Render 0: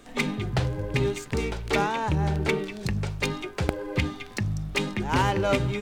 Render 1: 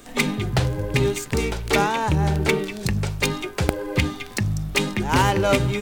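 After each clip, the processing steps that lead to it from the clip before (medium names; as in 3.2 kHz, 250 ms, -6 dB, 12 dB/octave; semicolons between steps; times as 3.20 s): treble shelf 8.1 kHz +11 dB; trim +4.5 dB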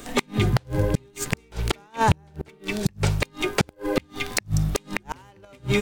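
inverted gate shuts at -12 dBFS, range -36 dB; trim +5 dB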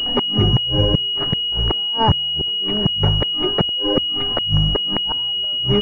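one-sided wavefolder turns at -12.5 dBFS; class-D stage that switches slowly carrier 2.9 kHz; trim +5 dB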